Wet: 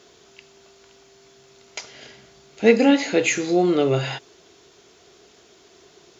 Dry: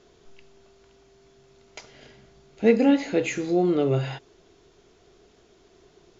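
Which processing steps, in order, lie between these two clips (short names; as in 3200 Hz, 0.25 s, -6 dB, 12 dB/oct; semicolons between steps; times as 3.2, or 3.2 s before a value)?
HPF 57 Hz; tilt +2 dB/oct; gain +6 dB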